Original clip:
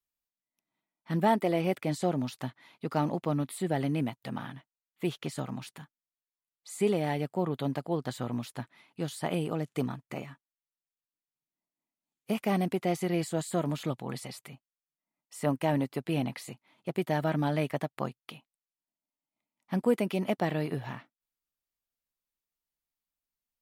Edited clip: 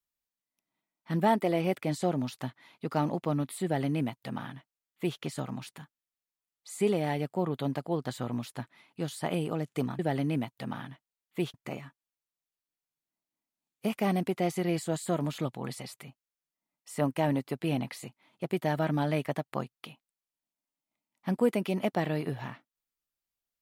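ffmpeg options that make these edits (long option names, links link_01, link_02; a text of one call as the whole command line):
ffmpeg -i in.wav -filter_complex "[0:a]asplit=3[link_01][link_02][link_03];[link_01]atrim=end=9.992[link_04];[link_02]atrim=start=3.638:end=5.192[link_05];[link_03]atrim=start=9.988[link_06];[link_04][link_05]acrossfade=duration=0.004:curve1=hsin:curve2=hsin[link_07];[link_07][link_06]acrossfade=duration=0.004:curve1=hsin:curve2=hsin" out.wav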